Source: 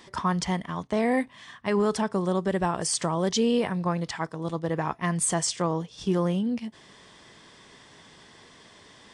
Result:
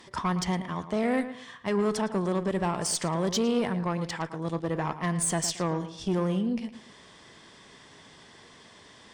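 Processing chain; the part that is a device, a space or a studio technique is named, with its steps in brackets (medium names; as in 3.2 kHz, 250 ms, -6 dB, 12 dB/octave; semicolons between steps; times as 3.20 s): rockabilly slapback (valve stage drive 20 dB, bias 0.25; tape echo 111 ms, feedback 33%, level -10 dB, low-pass 2.3 kHz)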